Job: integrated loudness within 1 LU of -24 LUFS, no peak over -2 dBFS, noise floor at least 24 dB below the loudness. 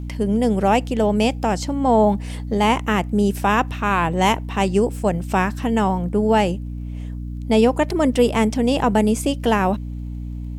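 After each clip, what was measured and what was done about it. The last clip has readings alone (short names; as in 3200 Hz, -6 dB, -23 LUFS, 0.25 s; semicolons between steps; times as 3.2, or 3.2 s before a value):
ticks 21/s; hum 60 Hz; harmonics up to 300 Hz; hum level -26 dBFS; loudness -19.5 LUFS; peak -4.5 dBFS; loudness target -24.0 LUFS
-> de-click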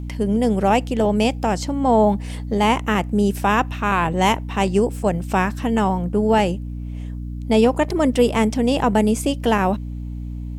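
ticks 0.19/s; hum 60 Hz; harmonics up to 300 Hz; hum level -26 dBFS
-> de-hum 60 Hz, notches 5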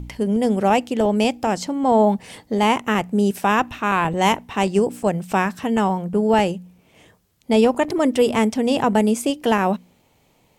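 hum none; loudness -20.0 LUFS; peak -5.0 dBFS; loudness target -24.0 LUFS
-> gain -4 dB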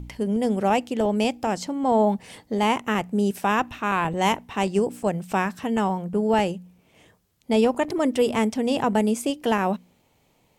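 loudness -24.0 LUFS; peak -9.0 dBFS; noise floor -64 dBFS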